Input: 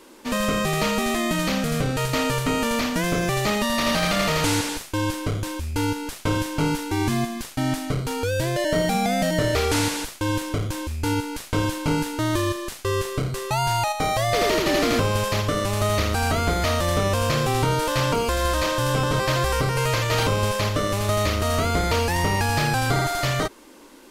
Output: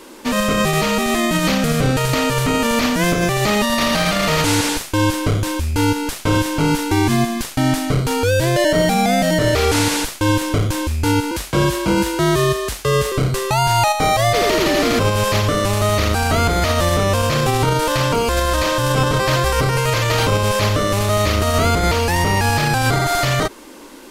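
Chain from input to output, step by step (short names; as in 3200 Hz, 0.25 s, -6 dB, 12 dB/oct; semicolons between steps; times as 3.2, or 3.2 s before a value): limiter -16.5 dBFS, peak gain reduction 8 dB; 11.31–13.12 frequency shift +40 Hz; gain +8.5 dB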